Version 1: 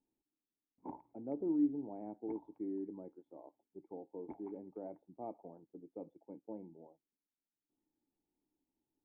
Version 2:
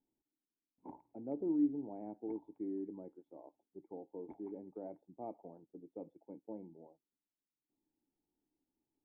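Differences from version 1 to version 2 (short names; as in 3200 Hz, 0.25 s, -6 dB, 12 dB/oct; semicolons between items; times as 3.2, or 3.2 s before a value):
background -4.0 dB; master: add bell 1200 Hz -2.5 dB 0.67 oct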